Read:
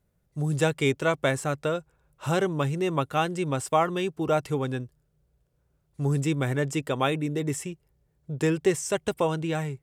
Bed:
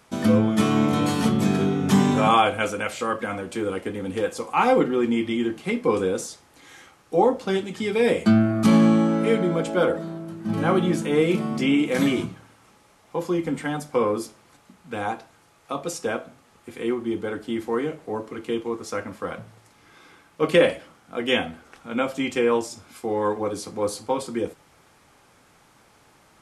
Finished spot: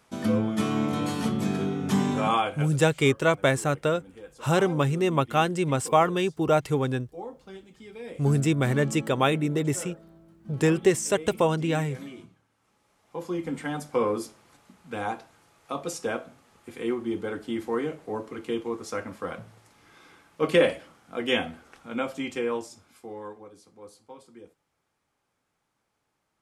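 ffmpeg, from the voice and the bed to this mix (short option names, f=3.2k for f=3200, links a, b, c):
-filter_complex "[0:a]adelay=2200,volume=2.5dB[a];[1:a]volume=11dB,afade=t=out:st=2.35:d=0.38:silence=0.199526,afade=t=in:st=12.49:d=1.38:silence=0.141254,afade=t=out:st=21.54:d=1.95:silence=0.11885[b];[a][b]amix=inputs=2:normalize=0"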